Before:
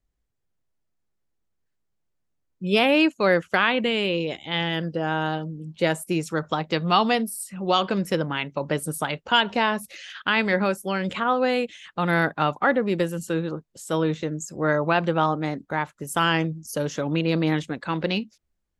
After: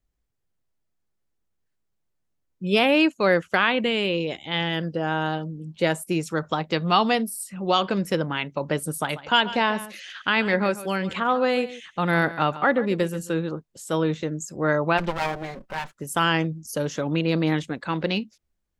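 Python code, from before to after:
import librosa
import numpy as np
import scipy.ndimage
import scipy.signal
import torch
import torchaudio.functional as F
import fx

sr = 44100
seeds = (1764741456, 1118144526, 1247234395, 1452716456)

y = fx.echo_single(x, sr, ms=140, db=-15.5, at=(8.95, 13.31))
y = fx.lower_of_two(y, sr, delay_ms=5.2, at=(14.97, 15.91), fade=0.02)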